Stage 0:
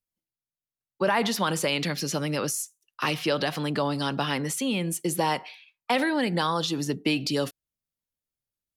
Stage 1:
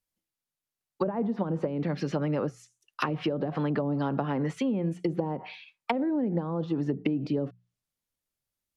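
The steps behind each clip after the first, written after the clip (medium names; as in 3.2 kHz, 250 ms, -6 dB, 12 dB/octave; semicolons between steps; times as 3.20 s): low-pass that closes with the level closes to 420 Hz, closed at -21.5 dBFS; hum notches 60/120/180 Hz; compression 2:1, threshold -30 dBFS, peak gain reduction 5.5 dB; trim +3.5 dB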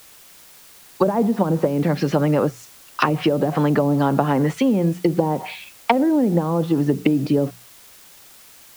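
peaking EQ 790 Hz +2.5 dB 0.94 oct; in parallel at -4 dB: word length cut 8-bit, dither triangular; on the sum: trim +5.5 dB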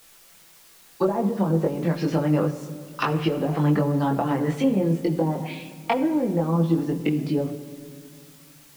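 chorus voices 4, 0.28 Hz, delay 22 ms, depth 4.2 ms; simulated room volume 3600 m³, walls mixed, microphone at 0.73 m; trim -2.5 dB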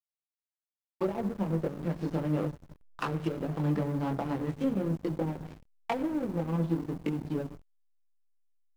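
hysteresis with a dead band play -23 dBFS; trim -7.5 dB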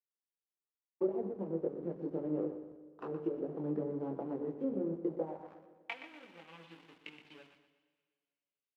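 band-pass sweep 400 Hz -> 2.8 kHz, 5.05–5.97 s; feedback delay 121 ms, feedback 41%, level -10.5 dB; plate-style reverb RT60 2 s, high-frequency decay 1×, DRR 14.5 dB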